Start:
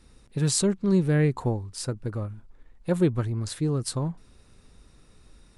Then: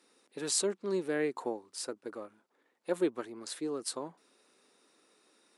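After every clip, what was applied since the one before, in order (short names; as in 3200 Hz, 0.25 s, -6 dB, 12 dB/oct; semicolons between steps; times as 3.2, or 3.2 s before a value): HPF 300 Hz 24 dB/oct; gain -4.5 dB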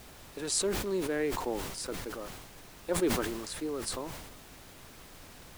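added noise pink -51 dBFS; sustainer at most 41 dB/s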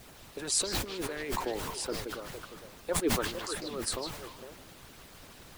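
harmonic-percussive split harmonic -15 dB; delay with a stepping band-pass 0.152 s, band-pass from 3500 Hz, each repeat -1.4 oct, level -2.5 dB; gain +3.5 dB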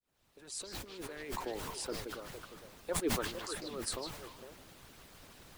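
opening faded in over 1.72 s; gain -4.5 dB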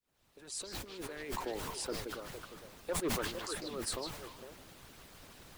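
hard clip -30.5 dBFS, distortion -14 dB; gain +1 dB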